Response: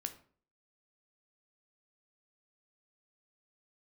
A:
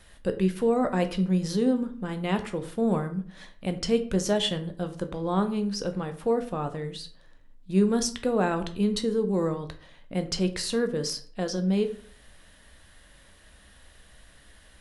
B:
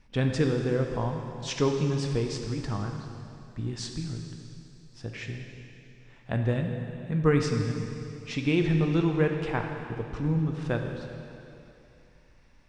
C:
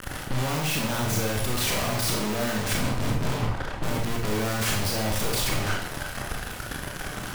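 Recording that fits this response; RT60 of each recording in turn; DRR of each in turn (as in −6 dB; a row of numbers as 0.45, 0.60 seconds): A; 0.45, 2.8, 0.65 seconds; 7.5, 3.0, −1.0 decibels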